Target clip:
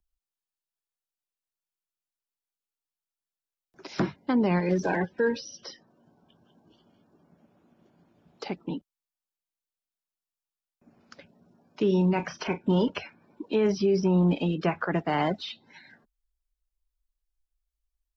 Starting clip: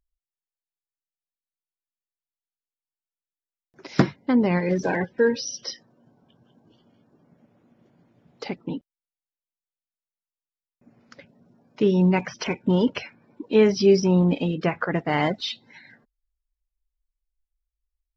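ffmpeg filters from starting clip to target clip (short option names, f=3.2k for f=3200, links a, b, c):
-filter_complex "[0:a]equalizer=f=125:t=o:w=0.33:g=-11,equalizer=f=250:t=o:w=0.33:g=-5,equalizer=f=500:t=o:w=0.33:g=-5,equalizer=f=2k:t=o:w=0.33:g=-6,acrossover=split=190|530|2700[a][b][c][d];[d]acompressor=threshold=-43dB:ratio=6[e];[a][b][c][e]amix=inputs=4:normalize=0,alimiter=limit=-15.5dB:level=0:latency=1:release=41,asettb=1/sr,asplit=3[f][g][h];[f]atrim=end=11.874[i];[g]atrim=start=11.87:end=12.88,asetpts=PTS-STARTPTS,afade=t=in:d=0.004:c=qsin,afade=t=out:st=1.006:d=0.004:c=qsin,asplit=2[j][k];[k]adelay=35,volume=-12dB[l];[j][l]amix=inputs=2:normalize=0,atrim=end_sample=44541[m];[h]atrim=start=12.876[n];[i][m]acrossfade=d=0.004:c1=hsin:c2=qsin[o];[o][n]acrossfade=d=0.004:c1=qsin:c2=hsin"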